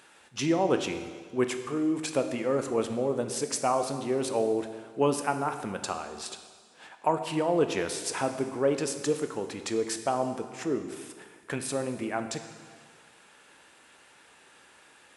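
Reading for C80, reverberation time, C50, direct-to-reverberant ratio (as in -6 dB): 10.0 dB, 1.7 s, 9.0 dB, 7.0 dB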